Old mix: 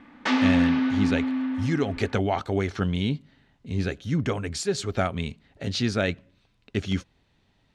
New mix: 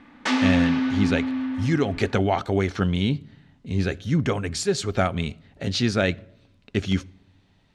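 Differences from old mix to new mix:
background: remove high-frequency loss of the air 90 metres
reverb: on

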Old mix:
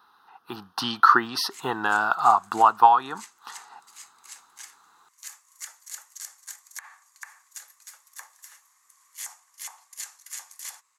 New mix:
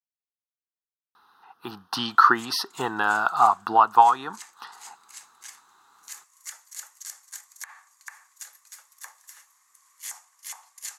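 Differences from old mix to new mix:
speech: entry +1.15 s
background: entry +0.85 s

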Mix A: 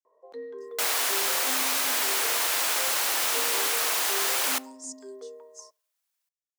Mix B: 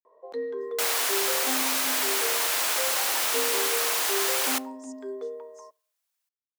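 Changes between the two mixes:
speech −10.5 dB
first sound +7.0 dB

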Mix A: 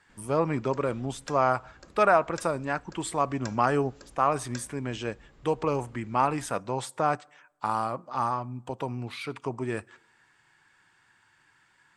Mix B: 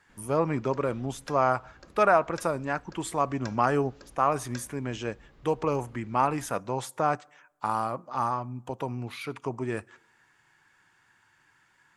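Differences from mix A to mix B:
speech: add high shelf with overshoot 5,900 Hz +7 dB, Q 1.5
master: add parametric band 8,200 Hz −14.5 dB 0.38 octaves

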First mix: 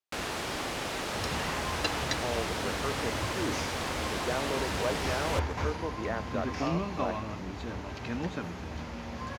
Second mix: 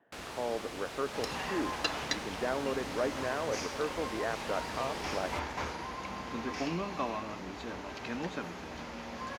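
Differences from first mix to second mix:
speech: entry −1.85 s
first sound −9.0 dB
second sound: add parametric band 88 Hz −14 dB 1.7 octaves

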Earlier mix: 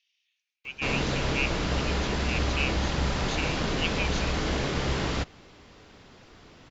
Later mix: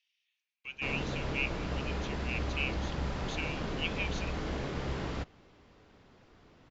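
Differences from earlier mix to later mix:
background −7.0 dB
master: add high-shelf EQ 2,600 Hz −8.5 dB

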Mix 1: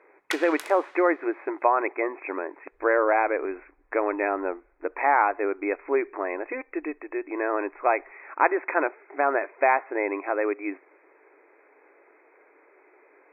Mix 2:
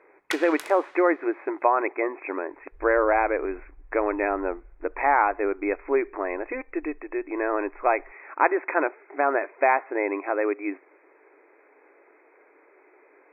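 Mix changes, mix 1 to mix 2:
second sound +11.0 dB
master: add low-shelf EQ 160 Hz +8 dB

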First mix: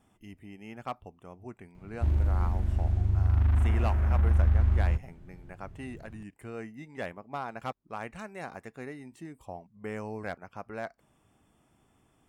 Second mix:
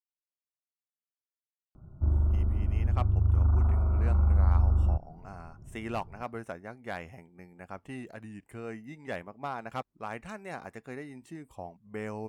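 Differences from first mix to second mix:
speech: entry +2.10 s
background: add linear-phase brick-wall low-pass 1,500 Hz

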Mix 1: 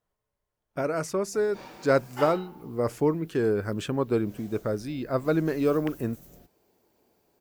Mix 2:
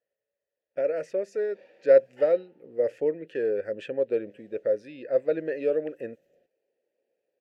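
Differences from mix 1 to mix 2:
speech +8.5 dB
master: add formant filter e

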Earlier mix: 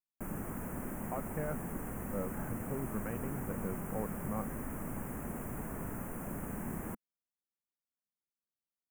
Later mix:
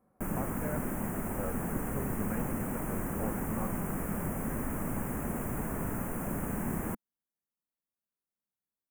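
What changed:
speech: entry −0.75 s
background +6.0 dB

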